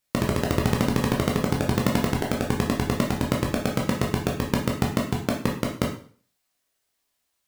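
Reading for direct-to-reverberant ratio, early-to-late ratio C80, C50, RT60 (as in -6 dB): -1.5 dB, 10.5 dB, 6.5 dB, 0.45 s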